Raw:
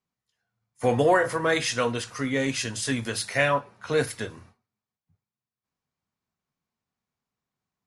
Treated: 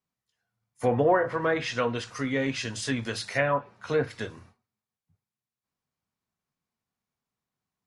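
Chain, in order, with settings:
treble cut that deepens with the level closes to 1,500 Hz, closed at −18 dBFS
level −1.5 dB

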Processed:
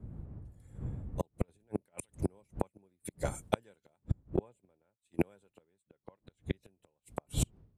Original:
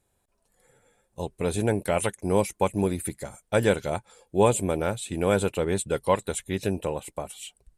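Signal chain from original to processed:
wind on the microphone 120 Hz −30 dBFS
high-pass filter 66 Hz 6 dB per octave
0:01.40–0:02.10: compressor whose output falls as the input rises −28 dBFS, ratio −0.5
0:04.36–0:05.19: noise gate −27 dBFS, range −25 dB
0:05.89–0:06.51: low-pass filter 3,400 Hz → 6,200 Hz 12 dB per octave
gate with flip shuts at −19 dBFS, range −40 dB
multiband upward and downward expander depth 70%
level +1 dB

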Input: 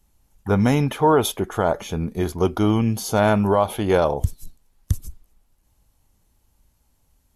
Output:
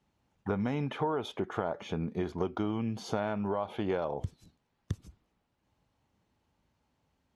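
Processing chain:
band-pass filter 120–3,400 Hz
downward compressor 6 to 1, threshold −25 dBFS, peak gain reduction 12.5 dB
level −3.5 dB

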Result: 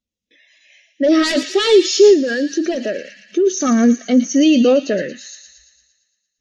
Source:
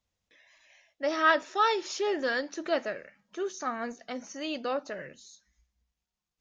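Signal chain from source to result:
sine wavefolder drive 13 dB, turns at −10.5 dBFS
drawn EQ curve 140 Hz 0 dB, 230 Hz +11 dB, 510 Hz +5 dB, 920 Hz −5 dB, 2,800 Hz +7 dB
brickwall limiter −8.5 dBFS, peak gain reduction 8 dB
on a send: delay with a high-pass on its return 114 ms, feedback 71%, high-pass 2,200 Hz, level −5 dB
0:02.13–0:03.47: on the sum: downward compressor 6 to 1, threshold −16 dBFS, peak gain reduction 5.5 dB
every bin expanded away from the loudest bin 1.5 to 1
level +2.5 dB

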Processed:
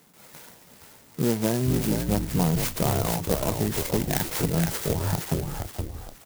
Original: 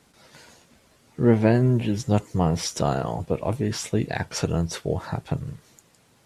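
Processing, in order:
downward compressor 4 to 1, threshold −21 dBFS, peak gain reduction 8 dB
loudspeaker in its box 120–6,300 Hz, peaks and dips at 170 Hz +5 dB, 960 Hz +3 dB, 2,100 Hz +10 dB, 3,200 Hz +9 dB
on a send: echo with shifted repeats 469 ms, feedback 37%, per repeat −68 Hz, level −4.5 dB
on the sum: converter with an unsteady clock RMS 0.12 ms

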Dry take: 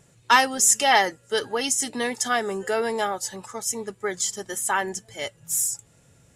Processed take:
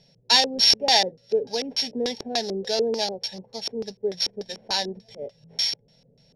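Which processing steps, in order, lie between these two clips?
samples sorted by size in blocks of 8 samples
phaser with its sweep stopped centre 330 Hz, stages 6
auto-filter low-pass square 3.4 Hz 410–4,600 Hz

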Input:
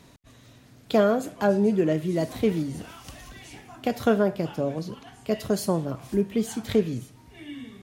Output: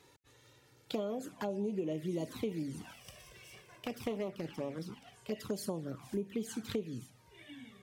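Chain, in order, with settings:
0:02.93–0:05.15: lower of the sound and its delayed copy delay 0.36 ms
high-pass filter 210 Hz 6 dB per octave
notch filter 660 Hz, Q 12
downward compressor 10 to 1, threshold −27 dBFS, peak gain reduction 11 dB
flanger swept by the level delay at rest 2.5 ms, full sweep at −27 dBFS
level −4 dB

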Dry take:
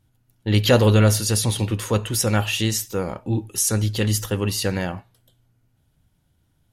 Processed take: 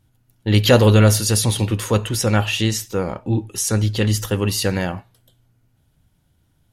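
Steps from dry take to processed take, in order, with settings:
0:02.09–0:04.22: high-shelf EQ 8,100 Hz −9 dB
level +3 dB

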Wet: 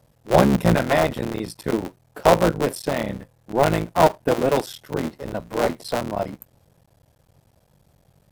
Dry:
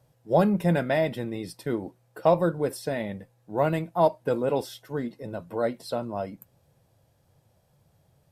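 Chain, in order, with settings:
sub-harmonics by changed cycles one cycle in 3, muted
level +7 dB

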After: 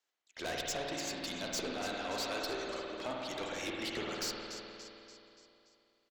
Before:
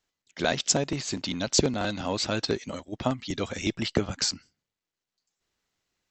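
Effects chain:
high-pass filter 430 Hz 12 dB per octave
repeating echo 288 ms, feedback 51%, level −15.5 dB
tube saturation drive 30 dB, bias 0.35
spring reverb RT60 2.7 s, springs 51 ms, chirp 25 ms, DRR −1.5 dB
level −4.5 dB

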